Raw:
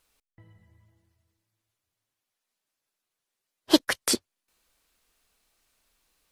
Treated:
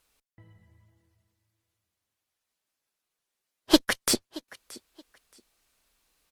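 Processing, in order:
repeating echo 625 ms, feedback 22%, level −20.5 dB
harmonic generator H 8 −24 dB, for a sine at −3 dBFS

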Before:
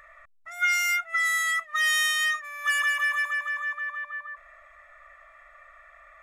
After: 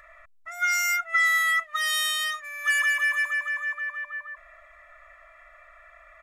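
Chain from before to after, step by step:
comb filter 3 ms, depth 56%

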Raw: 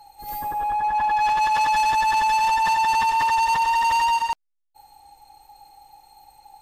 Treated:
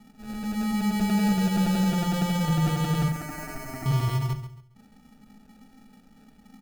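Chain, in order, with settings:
treble cut that deepens with the level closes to 2,500 Hz, closed at −20 dBFS
decimation without filtering 42×
0:03.08–0:03.86: phaser with its sweep stopped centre 690 Hz, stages 8
repeating echo 137 ms, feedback 28%, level −12 dB
on a send at −6.5 dB: convolution reverb RT60 0.30 s, pre-delay 4 ms
on the sum: level −5.5 dB

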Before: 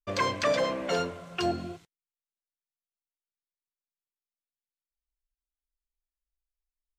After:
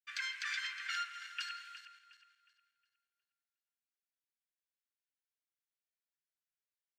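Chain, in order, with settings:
feedback delay that plays each chunk backwards 181 ms, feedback 56%, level −12 dB
Butterworth high-pass 1,400 Hz 72 dB per octave
high-shelf EQ 2,600 Hz −11 dB
brickwall limiter −31.5 dBFS, peak gain reduction 10.5 dB
slap from a distant wall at 28 metres, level −17 dB
level +3.5 dB

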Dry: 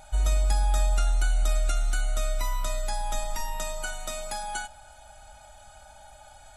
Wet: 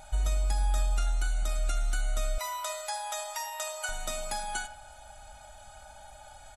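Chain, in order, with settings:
0:02.38–0:03.89: inverse Chebyshev high-pass filter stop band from 280 Hz, stop band 40 dB
downward compressor 2.5 to 1, threshold −26 dBFS, peak gain reduction 5.5 dB
0:00.55–0:01.59: double-tracking delay 41 ms −12.5 dB
far-end echo of a speakerphone 80 ms, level −12 dB

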